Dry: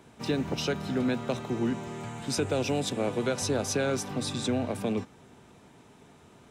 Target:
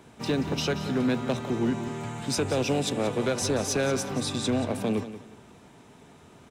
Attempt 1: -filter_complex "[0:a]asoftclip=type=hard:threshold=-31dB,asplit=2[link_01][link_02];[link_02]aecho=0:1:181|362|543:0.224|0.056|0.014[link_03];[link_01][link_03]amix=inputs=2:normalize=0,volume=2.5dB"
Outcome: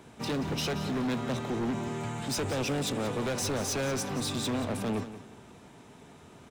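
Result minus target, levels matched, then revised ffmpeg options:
hard clipping: distortion +12 dB
-filter_complex "[0:a]asoftclip=type=hard:threshold=-22.5dB,asplit=2[link_01][link_02];[link_02]aecho=0:1:181|362|543:0.224|0.056|0.014[link_03];[link_01][link_03]amix=inputs=2:normalize=0,volume=2.5dB"

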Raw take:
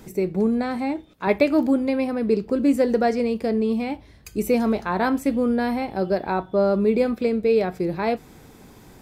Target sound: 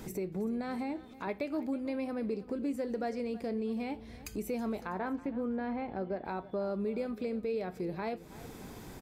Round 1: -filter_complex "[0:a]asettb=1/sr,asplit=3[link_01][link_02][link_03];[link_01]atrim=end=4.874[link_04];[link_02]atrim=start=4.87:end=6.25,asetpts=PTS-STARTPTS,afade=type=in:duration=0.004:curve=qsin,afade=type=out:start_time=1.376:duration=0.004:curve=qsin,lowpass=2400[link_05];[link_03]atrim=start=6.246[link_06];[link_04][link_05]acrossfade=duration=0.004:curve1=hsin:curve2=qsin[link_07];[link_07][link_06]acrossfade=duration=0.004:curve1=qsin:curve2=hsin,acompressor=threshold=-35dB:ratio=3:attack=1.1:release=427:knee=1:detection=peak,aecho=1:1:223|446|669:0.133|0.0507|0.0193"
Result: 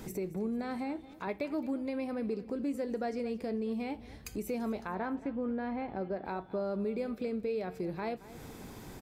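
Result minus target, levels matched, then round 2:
echo 101 ms early
-filter_complex "[0:a]asettb=1/sr,asplit=3[link_01][link_02][link_03];[link_01]atrim=end=4.874[link_04];[link_02]atrim=start=4.87:end=6.25,asetpts=PTS-STARTPTS,afade=type=in:duration=0.004:curve=qsin,afade=type=out:start_time=1.376:duration=0.004:curve=qsin,lowpass=2400[link_05];[link_03]atrim=start=6.246[link_06];[link_04][link_05]acrossfade=duration=0.004:curve1=hsin:curve2=qsin[link_07];[link_07][link_06]acrossfade=duration=0.004:curve1=qsin:curve2=hsin,acompressor=threshold=-35dB:ratio=3:attack=1.1:release=427:knee=1:detection=peak,aecho=1:1:324|648|972:0.133|0.0507|0.0193"

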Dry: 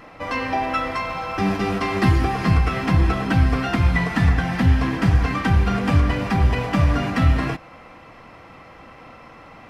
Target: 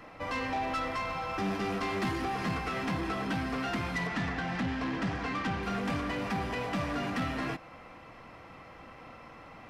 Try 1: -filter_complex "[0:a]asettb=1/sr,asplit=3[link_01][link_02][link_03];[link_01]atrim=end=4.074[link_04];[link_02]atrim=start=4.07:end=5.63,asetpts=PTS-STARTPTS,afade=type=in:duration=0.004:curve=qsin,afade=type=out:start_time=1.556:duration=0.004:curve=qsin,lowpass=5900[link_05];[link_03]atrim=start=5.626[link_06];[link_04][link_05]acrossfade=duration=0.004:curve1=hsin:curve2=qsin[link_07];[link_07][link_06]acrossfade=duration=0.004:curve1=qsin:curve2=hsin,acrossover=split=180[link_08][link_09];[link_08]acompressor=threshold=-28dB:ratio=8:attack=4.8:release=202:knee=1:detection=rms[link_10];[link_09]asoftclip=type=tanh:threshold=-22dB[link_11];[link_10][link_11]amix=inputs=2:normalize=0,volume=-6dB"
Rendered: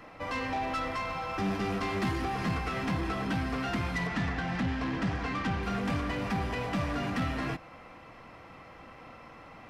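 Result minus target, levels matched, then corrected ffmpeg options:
downward compressor: peak gain reduction −6.5 dB
-filter_complex "[0:a]asettb=1/sr,asplit=3[link_01][link_02][link_03];[link_01]atrim=end=4.074[link_04];[link_02]atrim=start=4.07:end=5.63,asetpts=PTS-STARTPTS,afade=type=in:duration=0.004:curve=qsin,afade=type=out:start_time=1.556:duration=0.004:curve=qsin,lowpass=5900[link_05];[link_03]atrim=start=5.626[link_06];[link_04][link_05]acrossfade=duration=0.004:curve1=hsin:curve2=qsin[link_07];[link_07][link_06]acrossfade=duration=0.004:curve1=qsin:curve2=hsin,acrossover=split=180[link_08][link_09];[link_08]acompressor=threshold=-35.5dB:ratio=8:attack=4.8:release=202:knee=1:detection=rms[link_10];[link_09]asoftclip=type=tanh:threshold=-22dB[link_11];[link_10][link_11]amix=inputs=2:normalize=0,volume=-6dB"

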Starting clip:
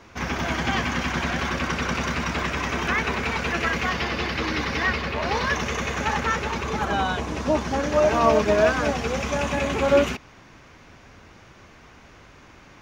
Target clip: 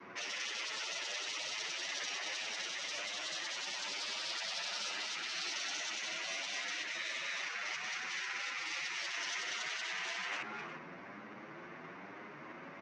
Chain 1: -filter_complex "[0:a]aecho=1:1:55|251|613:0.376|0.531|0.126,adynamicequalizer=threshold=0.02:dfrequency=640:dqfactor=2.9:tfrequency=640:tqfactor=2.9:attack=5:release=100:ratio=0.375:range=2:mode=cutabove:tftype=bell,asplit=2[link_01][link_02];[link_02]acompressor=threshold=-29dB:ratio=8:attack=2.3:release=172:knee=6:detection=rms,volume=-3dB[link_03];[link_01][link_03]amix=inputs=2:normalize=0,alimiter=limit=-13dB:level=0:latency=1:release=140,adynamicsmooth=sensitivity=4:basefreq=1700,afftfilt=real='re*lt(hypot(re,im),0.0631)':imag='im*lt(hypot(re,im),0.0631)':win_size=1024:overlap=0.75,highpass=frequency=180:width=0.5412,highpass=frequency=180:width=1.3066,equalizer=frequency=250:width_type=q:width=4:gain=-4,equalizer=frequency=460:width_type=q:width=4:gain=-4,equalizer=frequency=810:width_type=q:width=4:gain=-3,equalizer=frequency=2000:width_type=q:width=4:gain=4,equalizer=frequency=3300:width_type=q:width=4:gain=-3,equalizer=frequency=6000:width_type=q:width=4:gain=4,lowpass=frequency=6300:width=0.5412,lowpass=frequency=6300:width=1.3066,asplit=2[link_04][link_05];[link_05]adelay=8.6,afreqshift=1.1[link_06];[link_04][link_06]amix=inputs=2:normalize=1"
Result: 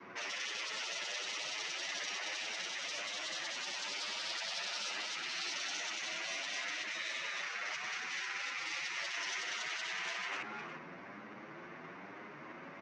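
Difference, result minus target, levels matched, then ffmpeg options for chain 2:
downward compressor: peak gain reduction +7 dB
-filter_complex "[0:a]aecho=1:1:55|251|613:0.376|0.531|0.126,adynamicequalizer=threshold=0.02:dfrequency=640:dqfactor=2.9:tfrequency=640:tqfactor=2.9:attack=5:release=100:ratio=0.375:range=2:mode=cutabove:tftype=bell,asplit=2[link_01][link_02];[link_02]acompressor=threshold=-21dB:ratio=8:attack=2.3:release=172:knee=6:detection=rms,volume=-3dB[link_03];[link_01][link_03]amix=inputs=2:normalize=0,alimiter=limit=-13dB:level=0:latency=1:release=140,adynamicsmooth=sensitivity=4:basefreq=1700,afftfilt=real='re*lt(hypot(re,im),0.0631)':imag='im*lt(hypot(re,im),0.0631)':win_size=1024:overlap=0.75,highpass=frequency=180:width=0.5412,highpass=frequency=180:width=1.3066,equalizer=frequency=250:width_type=q:width=4:gain=-4,equalizer=frequency=460:width_type=q:width=4:gain=-4,equalizer=frequency=810:width_type=q:width=4:gain=-3,equalizer=frequency=2000:width_type=q:width=4:gain=4,equalizer=frequency=3300:width_type=q:width=4:gain=-3,equalizer=frequency=6000:width_type=q:width=4:gain=4,lowpass=frequency=6300:width=0.5412,lowpass=frequency=6300:width=1.3066,asplit=2[link_04][link_05];[link_05]adelay=8.6,afreqshift=1.1[link_06];[link_04][link_06]amix=inputs=2:normalize=1"

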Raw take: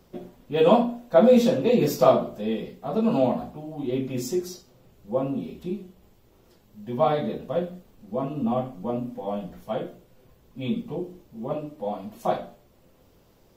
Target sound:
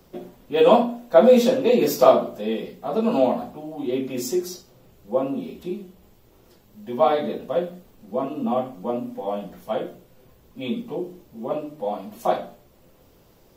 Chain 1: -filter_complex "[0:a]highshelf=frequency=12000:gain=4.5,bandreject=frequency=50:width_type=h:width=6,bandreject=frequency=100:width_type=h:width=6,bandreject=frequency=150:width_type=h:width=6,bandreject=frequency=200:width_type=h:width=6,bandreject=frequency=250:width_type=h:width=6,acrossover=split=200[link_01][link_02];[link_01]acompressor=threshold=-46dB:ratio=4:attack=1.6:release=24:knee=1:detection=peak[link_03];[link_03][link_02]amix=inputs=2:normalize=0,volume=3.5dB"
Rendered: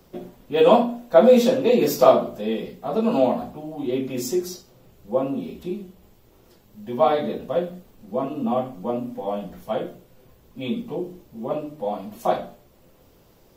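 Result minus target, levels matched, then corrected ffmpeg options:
downward compressor: peak gain reduction −6.5 dB
-filter_complex "[0:a]highshelf=frequency=12000:gain=4.5,bandreject=frequency=50:width_type=h:width=6,bandreject=frequency=100:width_type=h:width=6,bandreject=frequency=150:width_type=h:width=6,bandreject=frequency=200:width_type=h:width=6,bandreject=frequency=250:width_type=h:width=6,acrossover=split=200[link_01][link_02];[link_01]acompressor=threshold=-54.5dB:ratio=4:attack=1.6:release=24:knee=1:detection=peak[link_03];[link_03][link_02]amix=inputs=2:normalize=0,volume=3.5dB"

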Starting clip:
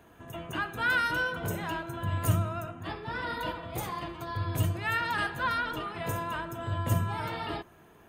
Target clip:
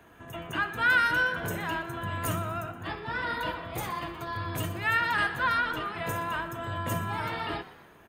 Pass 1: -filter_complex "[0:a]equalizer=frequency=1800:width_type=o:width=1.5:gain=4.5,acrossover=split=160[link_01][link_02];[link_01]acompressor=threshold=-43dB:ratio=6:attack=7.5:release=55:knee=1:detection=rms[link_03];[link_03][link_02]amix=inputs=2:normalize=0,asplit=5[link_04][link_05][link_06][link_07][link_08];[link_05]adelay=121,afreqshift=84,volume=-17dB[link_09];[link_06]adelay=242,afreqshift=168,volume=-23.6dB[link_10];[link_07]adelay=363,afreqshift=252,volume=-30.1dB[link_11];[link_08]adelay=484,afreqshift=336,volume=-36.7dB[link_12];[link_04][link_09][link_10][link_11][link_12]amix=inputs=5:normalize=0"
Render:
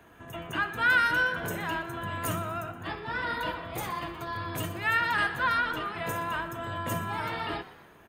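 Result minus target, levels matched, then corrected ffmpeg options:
downward compressor: peak gain reduction +5 dB
-filter_complex "[0:a]equalizer=frequency=1800:width_type=o:width=1.5:gain=4.5,acrossover=split=160[link_01][link_02];[link_01]acompressor=threshold=-37dB:ratio=6:attack=7.5:release=55:knee=1:detection=rms[link_03];[link_03][link_02]amix=inputs=2:normalize=0,asplit=5[link_04][link_05][link_06][link_07][link_08];[link_05]adelay=121,afreqshift=84,volume=-17dB[link_09];[link_06]adelay=242,afreqshift=168,volume=-23.6dB[link_10];[link_07]adelay=363,afreqshift=252,volume=-30.1dB[link_11];[link_08]adelay=484,afreqshift=336,volume=-36.7dB[link_12];[link_04][link_09][link_10][link_11][link_12]amix=inputs=5:normalize=0"

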